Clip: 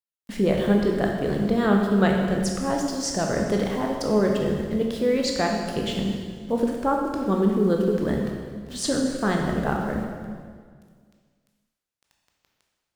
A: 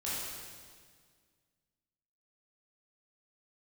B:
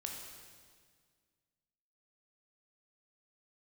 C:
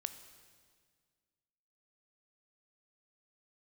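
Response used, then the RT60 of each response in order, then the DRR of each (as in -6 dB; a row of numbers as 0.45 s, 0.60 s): B; 1.8 s, 1.8 s, 1.8 s; -9.5 dB, 0.5 dB, 10.0 dB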